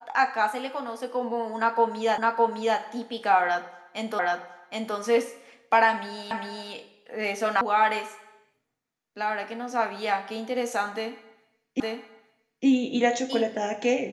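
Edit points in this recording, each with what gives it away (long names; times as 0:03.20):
0:02.18: the same again, the last 0.61 s
0:04.19: the same again, the last 0.77 s
0:06.31: the same again, the last 0.4 s
0:07.61: cut off before it has died away
0:11.80: the same again, the last 0.86 s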